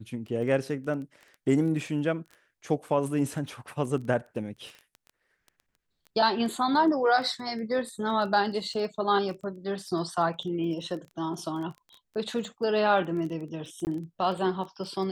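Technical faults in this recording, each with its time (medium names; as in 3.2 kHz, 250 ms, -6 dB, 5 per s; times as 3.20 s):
crackle 12 per s -36 dBFS
13.85–13.87 s: dropout 19 ms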